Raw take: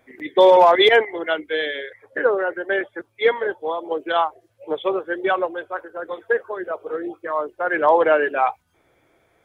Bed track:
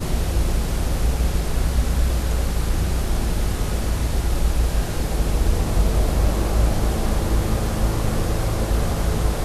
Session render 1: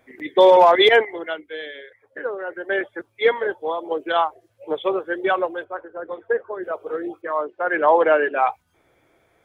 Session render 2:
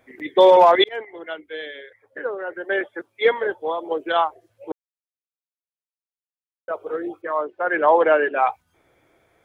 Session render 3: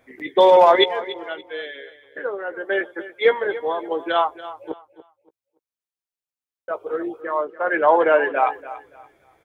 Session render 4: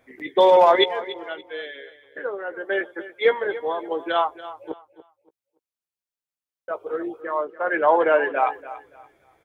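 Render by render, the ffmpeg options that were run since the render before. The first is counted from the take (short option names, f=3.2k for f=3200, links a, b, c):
-filter_complex "[0:a]asettb=1/sr,asplit=3[a][b][c];[a]atrim=end=5.644[d];[b]atrim=start=5.64:end=6.63,asetpts=PTS-STARTPTS,afade=t=in:d=0.004:c=qsin,afade=t=out:st=0.986:d=0.004:c=qsin,lowpass=f=1.1k:p=1[e];[c]atrim=start=6.626[f];[d][e]acrossfade=d=0.004:c1=hsin:c2=qsin[g];[g][f]acrossfade=d=0.004:c1=qsin:c2=hsin,asplit=3[h][i][j];[h]afade=t=out:st=7.21:d=0.02[k];[i]highpass=160,lowpass=3.7k,afade=t=in:st=7.21:d=0.02,afade=t=out:st=8.41:d=0.02[l];[j]afade=t=in:st=8.41:d=0.02[m];[k][l][m]amix=inputs=3:normalize=0,asplit=3[n][o][p];[n]atrim=end=1.42,asetpts=PTS-STARTPTS,afade=t=out:st=1:d=0.42:silence=0.354813[q];[o]atrim=start=1.42:end=2.39,asetpts=PTS-STARTPTS,volume=-9dB[r];[p]atrim=start=2.39,asetpts=PTS-STARTPTS,afade=t=in:d=0.42:silence=0.354813[s];[q][r][s]concat=n=3:v=0:a=1"
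-filter_complex "[0:a]asettb=1/sr,asplit=3[a][b][c];[a]atrim=end=2.644[d];[b]atrim=start=2.64:end=3.25,asetpts=PTS-STARTPTS,afade=t=in:d=0.004:c=qsin,afade=t=out:st=0.606:d=0.004:c=qsin,highpass=170[e];[c]atrim=start=3.246[f];[d][e]acrossfade=d=0.004:c1=hsin:c2=qsin[g];[g][f]acrossfade=d=0.004:c1=qsin:c2=hsin,asplit=4[h][i][j][k];[h]atrim=end=0.84,asetpts=PTS-STARTPTS,afade=t=out:st=0.836:d=0.004:c=hsin[l];[i]atrim=start=0.84:end=4.72,asetpts=PTS-STARTPTS,afade=t=in:d=0.72,afade=t=out:st=3.876:d=0.004:c=hsin[m];[j]atrim=start=4.72:end=6.68,asetpts=PTS-STARTPTS,volume=0[n];[k]atrim=start=6.68,asetpts=PTS-STARTPTS,afade=t=in:d=0.004:c=hsin[o];[l][m][n][o]concat=n=4:v=0:a=1"
-filter_complex "[0:a]asplit=2[a][b];[b]adelay=15,volume=-10.5dB[c];[a][c]amix=inputs=2:normalize=0,aecho=1:1:286|572|858:0.168|0.0436|0.0113"
-af "volume=-2dB"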